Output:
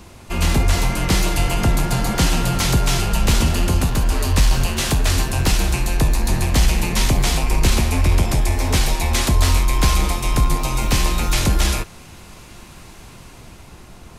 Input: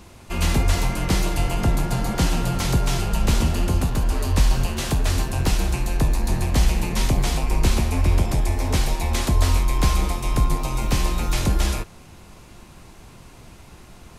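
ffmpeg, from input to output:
ffmpeg -i in.wav -filter_complex "[0:a]acrossover=split=1300[link_01][link_02];[link_02]dynaudnorm=framelen=110:gausssize=17:maxgain=4dB[link_03];[link_01][link_03]amix=inputs=2:normalize=0,asoftclip=type=tanh:threshold=-8dB,volume=3.5dB" out.wav

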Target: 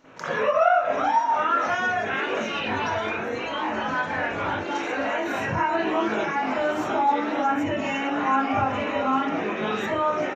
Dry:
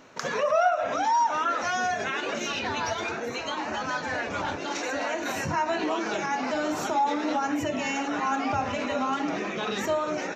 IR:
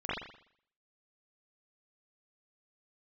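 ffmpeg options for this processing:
-filter_complex "[0:a]aecho=1:1:555|1110|1665|2220:0.075|0.039|0.0203|0.0105[link_01];[1:a]atrim=start_sample=2205,afade=type=out:start_time=0.14:duration=0.01,atrim=end_sample=6615[link_02];[link_01][link_02]afir=irnorm=-1:irlink=0,volume=-3dB"

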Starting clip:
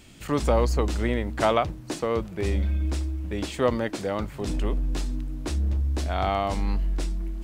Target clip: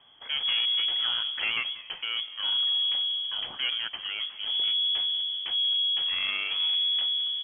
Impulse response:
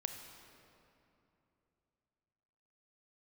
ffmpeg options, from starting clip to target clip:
-filter_complex "[0:a]equalizer=frequency=500:width_type=o:width=2.1:gain=-6.5,asoftclip=type=tanh:threshold=-22dB,aeval=exprs='0.0794*(cos(1*acos(clip(val(0)/0.0794,-1,1)))-cos(1*PI/2))+0.00501*(cos(7*acos(clip(val(0)/0.0794,-1,1)))-cos(7*PI/2))':channel_layout=same,asplit=6[link_01][link_02][link_03][link_04][link_05][link_06];[link_02]adelay=188,afreqshift=73,volume=-19dB[link_07];[link_03]adelay=376,afreqshift=146,volume=-23.7dB[link_08];[link_04]adelay=564,afreqshift=219,volume=-28.5dB[link_09];[link_05]adelay=752,afreqshift=292,volume=-33.2dB[link_10];[link_06]adelay=940,afreqshift=365,volume=-37.9dB[link_11];[link_01][link_07][link_08][link_09][link_10][link_11]amix=inputs=6:normalize=0,lowpass=frequency=2900:width_type=q:width=0.5098,lowpass=frequency=2900:width_type=q:width=0.6013,lowpass=frequency=2900:width_type=q:width=0.9,lowpass=frequency=2900:width_type=q:width=2.563,afreqshift=-3400"

